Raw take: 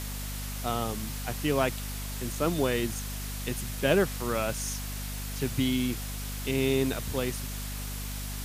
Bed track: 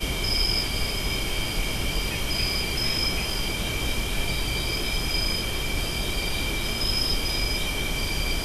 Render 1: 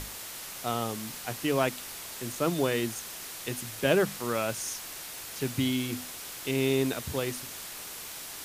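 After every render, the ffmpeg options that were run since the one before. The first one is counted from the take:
ffmpeg -i in.wav -af "bandreject=frequency=50:width_type=h:width=6,bandreject=frequency=100:width_type=h:width=6,bandreject=frequency=150:width_type=h:width=6,bandreject=frequency=200:width_type=h:width=6,bandreject=frequency=250:width_type=h:width=6" out.wav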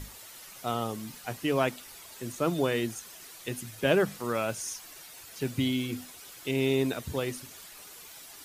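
ffmpeg -i in.wav -af "afftdn=noise_reduction=10:noise_floor=-42" out.wav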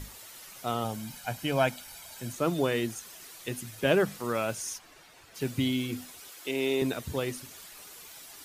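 ffmpeg -i in.wav -filter_complex "[0:a]asettb=1/sr,asplit=3[link_01][link_02][link_03];[link_01]atrim=end=0.844[link_04];[link_02]atrim=start=0.84:end=2.34,asetpts=PTS-STARTPTS,afade=type=in:duration=0.004:curve=qsin,afade=type=out:start_time=1.496:duration=0.004:curve=qsin,aecho=1:1:1.3:0.56,atrim=end_sample=66150[link_05];[link_03]atrim=start=2.336[link_06];[link_04][link_05]acrossfade=duration=0.004:curve1=hsin:curve2=qsin[link_07];[link_07][link_06]acrossfade=duration=0.004:curve1=qsin:curve2=hsin,asplit=3[link_08][link_09][link_10];[link_08]afade=type=out:start_time=4.77:duration=0.02[link_11];[link_09]aemphasis=mode=reproduction:type=75kf,afade=type=in:start_time=4.77:duration=0.02,afade=type=out:start_time=5.34:duration=0.02[link_12];[link_10]afade=type=in:start_time=5.34:duration=0.02[link_13];[link_11][link_12][link_13]amix=inputs=3:normalize=0,asettb=1/sr,asplit=3[link_14][link_15][link_16];[link_14]atrim=end=6.284[link_17];[link_15]atrim=start=6.28:end=6.82,asetpts=PTS-STARTPTS,afade=type=in:duration=0.004:curve=qsin,afade=type=out:start_time=0.536:duration=0.004:curve=qsin,highpass=290[link_18];[link_16]atrim=start=6.816[link_19];[link_17][link_18]acrossfade=duration=0.004:curve1=hsin:curve2=qsin[link_20];[link_20][link_19]acrossfade=duration=0.004:curve1=qsin:curve2=hsin" out.wav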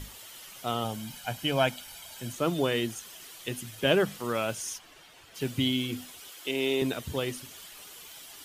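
ffmpeg -i in.wav -af "equalizer=frequency=3100:width_type=o:width=0.29:gain=7.5" out.wav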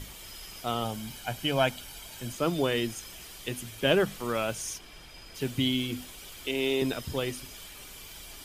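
ffmpeg -i in.wav -i bed.wav -filter_complex "[1:a]volume=-24.5dB[link_01];[0:a][link_01]amix=inputs=2:normalize=0" out.wav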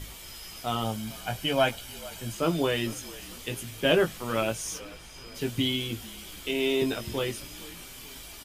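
ffmpeg -i in.wav -filter_complex "[0:a]asplit=2[link_01][link_02];[link_02]adelay=18,volume=-5dB[link_03];[link_01][link_03]amix=inputs=2:normalize=0,asplit=5[link_04][link_05][link_06][link_07][link_08];[link_05]adelay=445,afreqshift=-48,volume=-19.5dB[link_09];[link_06]adelay=890,afreqshift=-96,volume=-25.7dB[link_10];[link_07]adelay=1335,afreqshift=-144,volume=-31.9dB[link_11];[link_08]adelay=1780,afreqshift=-192,volume=-38.1dB[link_12];[link_04][link_09][link_10][link_11][link_12]amix=inputs=5:normalize=0" out.wav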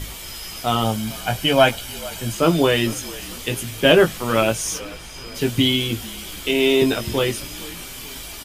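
ffmpeg -i in.wav -af "volume=9.5dB,alimiter=limit=-1dB:level=0:latency=1" out.wav

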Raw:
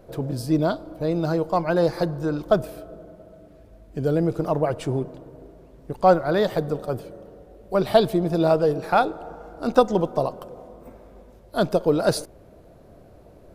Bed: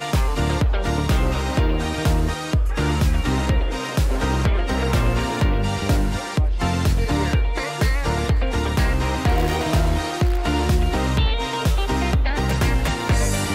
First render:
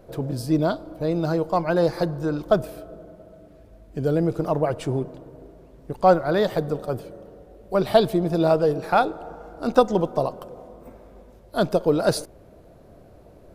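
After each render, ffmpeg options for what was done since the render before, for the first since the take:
ffmpeg -i in.wav -af anull out.wav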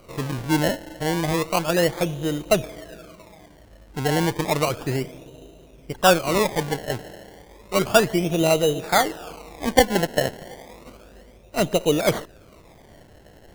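ffmpeg -i in.wav -af "acrusher=samples=25:mix=1:aa=0.000001:lfo=1:lforange=25:lforate=0.32" out.wav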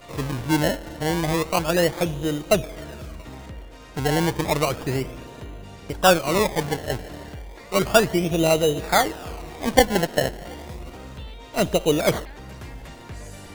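ffmpeg -i in.wav -i bed.wav -filter_complex "[1:a]volume=-19dB[link_01];[0:a][link_01]amix=inputs=2:normalize=0" out.wav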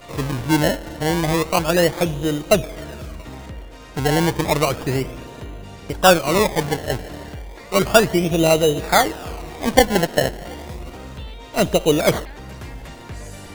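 ffmpeg -i in.wav -af "volume=3.5dB,alimiter=limit=-1dB:level=0:latency=1" out.wav

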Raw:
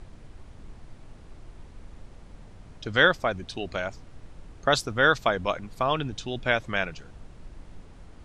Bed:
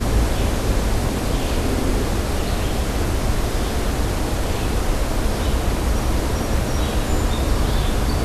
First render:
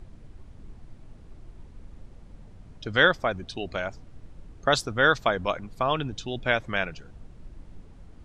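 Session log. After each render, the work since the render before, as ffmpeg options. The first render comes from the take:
ffmpeg -i in.wav -af "afftdn=noise_reduction=6:noise_floor=-49" out.wav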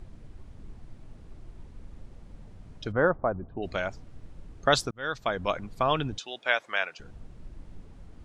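ffmpeg -i in.wav -filter_complex "[0:a]asplit=3[link_01][link_02][link_03];[link_01]afade=type=out:start_time=2.91:duration=0.02[link_04];[link_02]lowpass=frequency=1200:width=0.5412,lowpass=frequency=1200:width=1.3066,afade=type=in:start_time=2.91:duration=0.02,afade=type=out:start_time=3.62:duration=0.02[link_05];[link_03]afade=type=in:start_time=3.62:duration=0.02[link_06];[link_04][link_05][link_06]amix=inputs=3:normalize=0,asettb=1/sr,asplit=3[link_07][link_08][link_09];[link_07]atrim=end=6.184[link_10];[link_08]atrim=start=6.18:end=7,asetpts=PTS-STARTPTS,afade=type=in:duration=0.004:curve=qsin,afade=type=out:start_time=0.816:duration=0.004:curve=qsin,highpass=650[link_11];[link_09]atrim=start=6.996[link_12];[link_10][link_11]acrossfade=duration=0.004:curve1=hsin:curve2=qsin[link_13];[link_13][link_12]acrossfade=duration=0.004:curve1=qsin:curve2=hsin,asplit=2[link_14][link_15];[link_14]atrim=end=4.91,asetpts=PTS-STARTPTS,afade=type=out:start_time=4.906:duration=0.004:curve=hsin[link_16];[link_15]atrim=start=4.91,asetpts=PTS-STARTPTS,afade=type=in:duration=0.66[link_17];[link_16][link_17]concat=n=2:v=0:a=1" out.wav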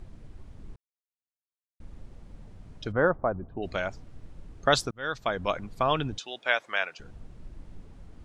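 ffmpeg -i in.wav -filter_complex "[0:a]asplit=3[link_01][link_02][link_03];[link_01]atrim=end=0.76,asetpts=PTS-STARTPTS,afade=type=out:start_time=0.756:duration=0.004:curve=hsin[link_04];[link_02]atrim=start=0.76:end=1.8,asetpts=PTS-STARTPTS,volume=0[link_05];[link_03]atrim=start=1.8,asetpts=PTS-STARTPTS,afade=type=in:duration=0.004:curve=hsin[link_06];[link_04][link_05][link_06]concat=n=3:v=0:a=1" out.wav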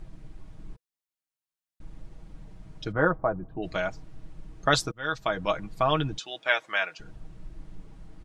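ffmpeg -i in.wav -af "bandreject=frequency=490:width=12,aecho=1:1:6.3:0.57" out.wav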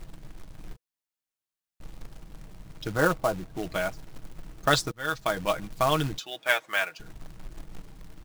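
ffmpeg -i in.wav -af "acrusher=bits=3:mode=log:mix=0:aa=0.000001" out.wav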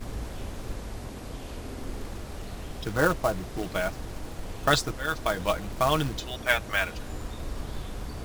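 ffmpeg -i in.wav -i bed.wav -filter_complex "[1:a]volume=-17.5dB[link_01];[0:a][link_01]amix=inputs=2:normalize=0" out.wav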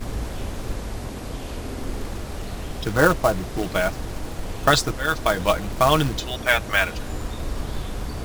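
ffmpeg -i in.wav -af "volume=6.5dB,alimiter=limit=-3dB:level=0:latency=1" out.wav

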